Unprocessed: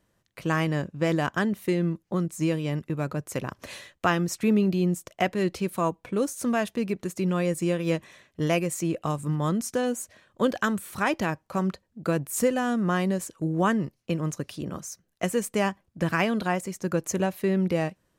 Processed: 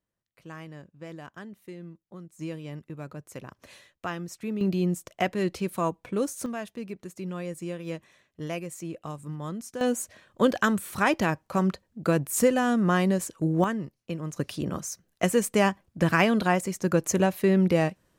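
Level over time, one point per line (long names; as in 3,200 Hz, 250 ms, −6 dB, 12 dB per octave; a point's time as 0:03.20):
−17 dB
from 0:02.39 −10 dB
from 0:04.61 −1.5 dB
from 0:06.46 −9 dB
from 0:09.81 +2 dB
from 0:13.64 −5.5 dB
from 0:14.36 +3 dB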